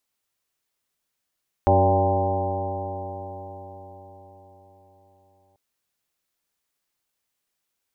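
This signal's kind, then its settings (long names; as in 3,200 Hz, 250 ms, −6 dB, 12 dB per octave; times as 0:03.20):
stiff-string partials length 3.89 s, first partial 92.4 Hz, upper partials −10.5/−7.5/−4.5/−11/0/−10.5/1/−11/−16.5 dB, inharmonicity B 0.0025, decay 4.93 s, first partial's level −19 dB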